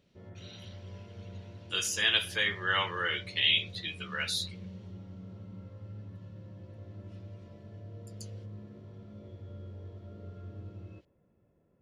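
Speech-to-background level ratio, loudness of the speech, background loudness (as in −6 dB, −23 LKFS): 18.0 dB, −29.0 LKFS, −47.0 LKFS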